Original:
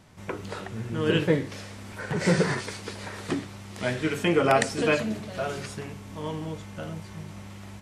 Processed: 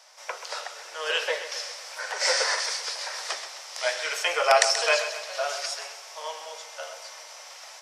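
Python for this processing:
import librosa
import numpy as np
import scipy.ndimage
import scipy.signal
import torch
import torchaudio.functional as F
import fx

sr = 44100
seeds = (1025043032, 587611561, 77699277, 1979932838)

y = scipy.signal.sosfilt(scipy.signal.butter(8, 540.0, 'highpass', fs=sr, output='sos'), x)
y = fx.peak_eq(y, sr, hz=5400.0, db=13.5, octaves=0.61)
y = fx.echo_feedback(y, sr, ms=131, feedback_pct=51, wet_db=-11)
y = y * librosa.db_to_amplitude(2.5)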